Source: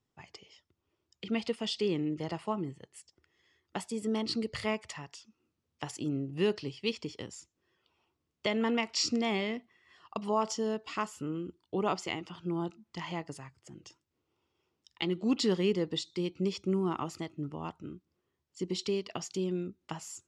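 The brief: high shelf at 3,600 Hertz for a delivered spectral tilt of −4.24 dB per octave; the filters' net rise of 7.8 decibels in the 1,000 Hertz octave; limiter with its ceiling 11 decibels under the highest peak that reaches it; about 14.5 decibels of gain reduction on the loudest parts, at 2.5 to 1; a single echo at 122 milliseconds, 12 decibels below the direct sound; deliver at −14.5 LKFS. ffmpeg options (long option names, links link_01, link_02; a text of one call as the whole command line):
ffmpeg -i in.wav -af "equalizer=frequency=1000:width_type=o:gain=9,highshelf=frequency=3600:gain=4,acompressor=threshold=-41dB:ratio=2.5,alimiter=level_in=7dB:limit=-24dB:level=0:latency=1,volume=-7dB,aecho=1:1:122:0.251,volume=28.5dB" out.wav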